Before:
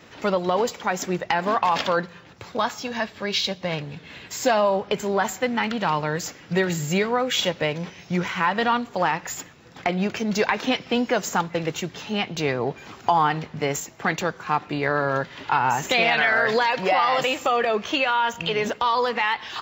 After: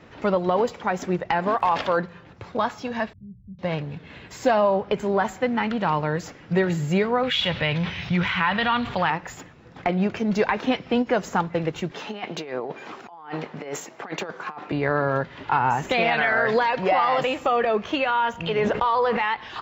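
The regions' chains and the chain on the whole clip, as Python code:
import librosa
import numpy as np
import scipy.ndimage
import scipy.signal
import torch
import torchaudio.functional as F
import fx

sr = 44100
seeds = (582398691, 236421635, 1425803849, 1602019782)

y = fx.peak_eq(x, sr, hz=200.0, db=-6.0, octaves=0.61, at=(1.48, 1.98), fade=0.02)
y = fx.dmg_crackle(y, sr, seeds[0], per_s=120.0, level_db=-33.0, at=(1.48, 1.98), fade=0.02)
y = fx.chain(y, sr, fx.cheby2_lowpass(hz=940.0, order=4, stop_db=80),
    fx.quant_float(bits=8), at=(3.13, 3.59))
y = fx.chain(y, sr, fx.curve_eq(hz=(120.0, 300.0, 430.0, 3600.0, 6500.0, 12000.0), db=(0, -11, -11, 6, -8, -3)),
    fx.env_flatten(amount_pct=50), at=(7.23, 9.1))
y = fx.chain(y, sr, fx.over_compress(threshold_db=-28.0, ratio=-0.5),
    fx.highpass(hz=310.0, slope=12), at=(11.91, 14.72))
y = fx.chain(y, sr, fx.lowpass(hz=3300.0, slope=6),
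    fx.peak_eq(hz=250.0, db=-10.5, octaves=0.23),
    fx.env_flatten(amount_pct=70), at=(18.58, 19.17))
y = fx.lowpass(y, sr, hz=1700.0, slope=6)
y = fx.low_shelf(y, sr, hz=69.0, db=8.0)
y = fx.end_taper(y, sr, db_per_s=470.0)
y = y * librosa.db_to_amplitude(1.0)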